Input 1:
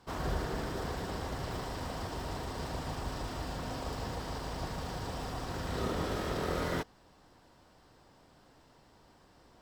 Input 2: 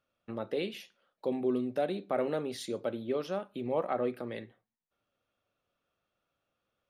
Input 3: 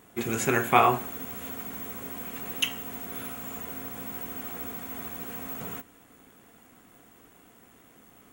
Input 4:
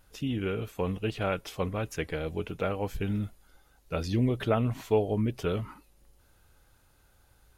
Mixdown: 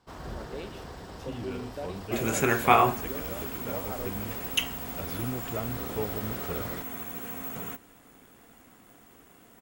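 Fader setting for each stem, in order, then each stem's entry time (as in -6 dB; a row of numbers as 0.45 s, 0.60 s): -5.5 dB, -7.5 dB, 0.0 dB, -8.5 dB; 0.00 s, 0.00 s, 1.95 s, 1.05 s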